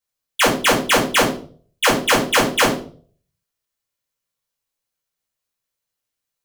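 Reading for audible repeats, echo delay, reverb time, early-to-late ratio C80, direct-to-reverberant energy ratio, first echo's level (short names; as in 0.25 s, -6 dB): none, none, 0.45 s, 12.0 dB, -6.5 dB, none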